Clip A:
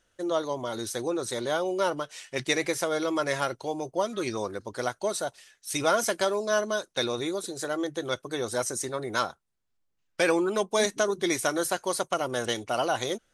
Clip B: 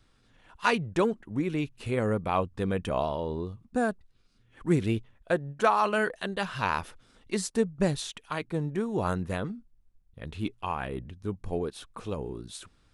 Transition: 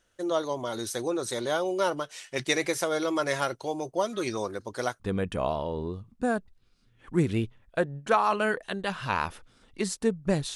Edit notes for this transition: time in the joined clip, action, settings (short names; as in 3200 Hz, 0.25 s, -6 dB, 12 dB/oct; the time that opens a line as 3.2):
clip A
5 switch to clip B from 2.53 s